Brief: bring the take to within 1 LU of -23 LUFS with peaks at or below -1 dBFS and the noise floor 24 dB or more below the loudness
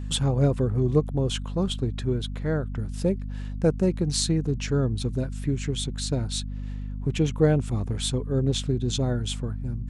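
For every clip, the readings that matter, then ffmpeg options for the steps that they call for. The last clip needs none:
hum 50 Hz; harmonics up to 250 Hz; hum level -30 dBFS; loudness -26.5 LUFS; peak -7.5 dBFS; loudness target -23.0 LUFS
-> -af "bandreject=f=50:t=h:w=6,bandreject=f=100:t=h:w=6,bandreject=f=150:t=h:w=6,bandreject=f=200:t=h:w=6,bandreject=f=250:t=h:w=6"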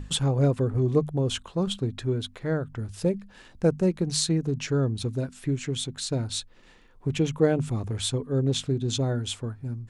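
hum none; loudness -27.0 LUFS; peak -8.5 dBFS; loudness target -23.0 LUFS
-> -af "volume=4dB"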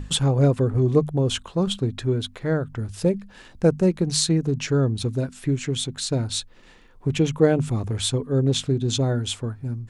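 loudness -23.0 LUFS; peak -4.5 dBFS; noise floor -49 dBFS

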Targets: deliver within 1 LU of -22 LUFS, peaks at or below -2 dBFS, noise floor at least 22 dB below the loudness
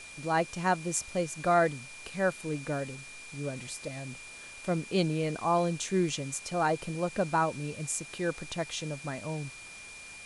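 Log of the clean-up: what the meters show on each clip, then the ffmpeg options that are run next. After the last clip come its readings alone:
steady tone 2400 Hz; tone level -46 dBFS; noise floor -47 dBFS; noise floor target -54 dBFS; loudness -31.5 LUFS; peak -13.0 dBFS; loudness target -22.0 LUFS
-> -af "bandreject=f=2.4k:w=30"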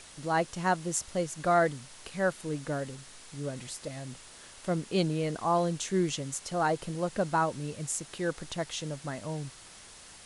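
steady tone none; noise floor -51 dBFS; noise floor target -54 dBFS
-> -af "afftdn=nr=6:nf=-51"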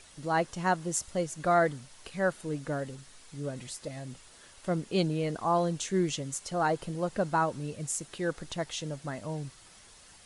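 noise floor -55 dBFS; loudness -31.5 LUFS; peak -13.0 dBFS; loudness target -22.0 LUFS
-> -af "volume=9.5dB"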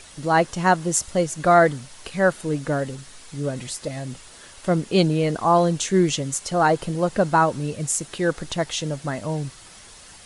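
loudness -22.0 LUFS; peak -3.5 dBFS; noise floor -46 dBFS

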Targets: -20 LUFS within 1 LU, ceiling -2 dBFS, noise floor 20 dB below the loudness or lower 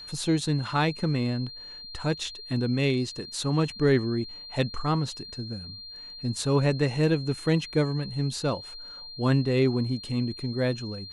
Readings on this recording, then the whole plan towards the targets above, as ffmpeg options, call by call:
steady tone 4200 Hz; tone level -40 dBFS; loudness -27.5 LUFS; peak -12.0 dBFS; loudness target -20.0 LUFS
-> -af "bandreject=f=4.2k:w=30"
-af "volume=7.5dB"

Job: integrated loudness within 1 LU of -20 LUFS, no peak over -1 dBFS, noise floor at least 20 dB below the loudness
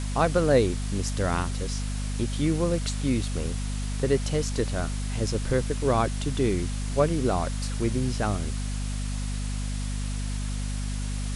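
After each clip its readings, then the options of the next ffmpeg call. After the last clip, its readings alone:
hum 50 Hz; harmonics up to 250 Hz; hum level -27 dBFS; noise floor -30 dBFS; noise floor target -48 dBFS; loudness -27.5 LUFS; peak -9.0 dBFS; loudness target -20.0 LUFS
-> -af "bandreject=f=50:t=h:w=6,bandreject=f=100:t=h:w=6,bandreject=f=150:t=h:w=6,bandreject=f=200:t=h:w=6,bandreject=f=250:t=h:w=6"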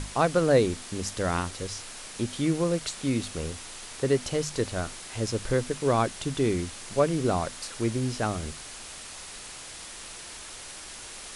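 hum none; noise floor -42 dBFS; noise floor target -48 dBFS
-> -af "afftdn=nr=6:nf=-42"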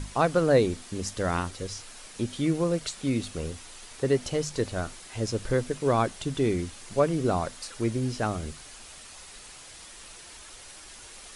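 noise floor -47 dBFS; noise floor target -49 dBFS
-> -af "afftdn=nr=6:nf=-47"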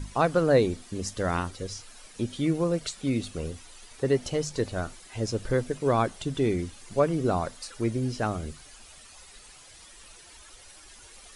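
noise floor -51 dBFS; loudness -28.5 LUFS; peak -10.0 dBFS; loudness target -20.0 LUFS
-> -af "volume=8.5dB"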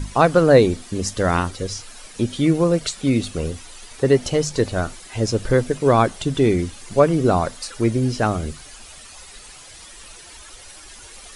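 loudness -20.0 LUFS; peak -1.5 dBFS; noise floor -42 dBFS

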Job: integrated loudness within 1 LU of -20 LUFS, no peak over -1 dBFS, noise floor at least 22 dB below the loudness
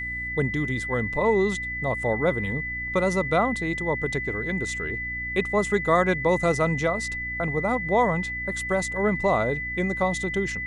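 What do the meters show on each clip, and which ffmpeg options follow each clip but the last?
hum 60 Hz; harmonics up to 300 Hz; hum level -37 dBFS; steady tone 2000 Hz; tone level -29 dBFS; loudness -24.5 LUFS; peak -7.0 dBFS; loudness target -20.0 LUFS
-> -af "bandreject=f=60:t=h:w=4,bandreject=f=120:t=h:w=4,bandreject=f=180:t=h:w=4,bandreject=f=240:t=h:w=4,bandreject=f=300:t=h:w=4"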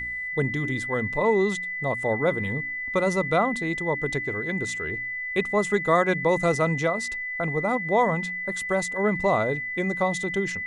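hum none; steady tone 2000 Hz; tone level -29 dBFS
-> -af "bandreject=f=2k:w=30"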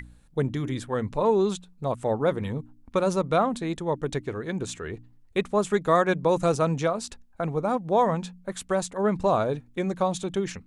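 steady tone none; loudness -26.5 LUFS; peak -8.0 dBFS; loudness target -20.0 LUFS
-> -af "volume=6.5dB"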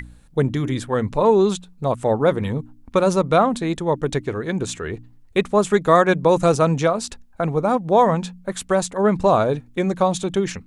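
loudness -20.0 LUFS; peak -1.5 dBFS; noise floor -49 dBFS

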